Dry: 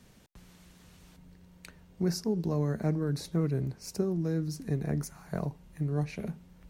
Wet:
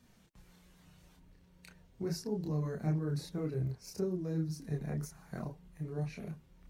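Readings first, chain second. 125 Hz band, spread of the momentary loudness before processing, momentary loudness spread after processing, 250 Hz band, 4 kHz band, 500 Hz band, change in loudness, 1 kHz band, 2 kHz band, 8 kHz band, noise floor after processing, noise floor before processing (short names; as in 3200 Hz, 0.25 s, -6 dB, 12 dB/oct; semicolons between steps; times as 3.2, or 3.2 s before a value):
-5.0 dB, 7 LU, 10 LU, -6.0 dB, -6.0 dB, -5.5 dB, -5.5 dB, -6.0 dB, -6.0 dB, -6.5 dB, -64 dBFS, -58 dBFS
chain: bin magnitudes rounded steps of 15 dB; chorus voices 4, 0.42 Hz, delay 29 ms, depth 4.5 ms; gain -2.5 dB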